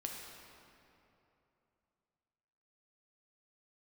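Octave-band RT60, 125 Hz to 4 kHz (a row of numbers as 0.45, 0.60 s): 3.3, 3.1, 3.1, 2.9, 2.4, 1.8 s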